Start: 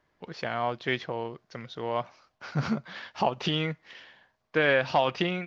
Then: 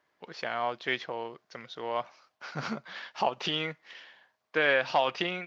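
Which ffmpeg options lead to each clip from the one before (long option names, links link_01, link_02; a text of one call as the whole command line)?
ffmpeg -i in.wav -af "highpass=frequency=500:poles=1" out.wav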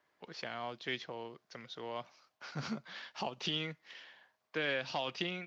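ffmpeg -i in.wav -filter_complex "[0:a]acrossover=split=320|3000[link_01][link_02][link_03];[link_02]acompressor=threshold=-54dB:ratio=1.5[link_04];[link_01][link_04][link_03]amix=inputs=3:normalize=0,volume=-2dB" out.wav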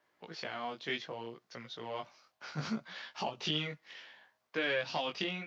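ffmpeg -i in.wav -af "flanger=delay=16.5:depth=4.5:speed=0.65,volume=4.5dB" out.wav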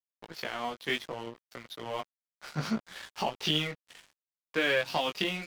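ffmpeg -i in.wav -af "aeval=exprs='sgn(val(0))*max(abs(val(0))-0.00355,0)':channel_layout=same,volume=6.5dB" out.wav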